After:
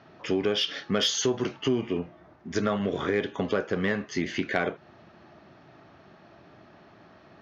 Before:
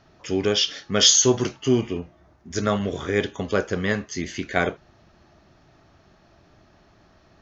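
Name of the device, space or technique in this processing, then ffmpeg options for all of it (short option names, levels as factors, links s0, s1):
AM radio: -af "highpass=140,lowpass=3300,acompressor=threshold=0.0447:ratio=4,asoftclip=type=tanh:threshold=0.141,volume=1.68"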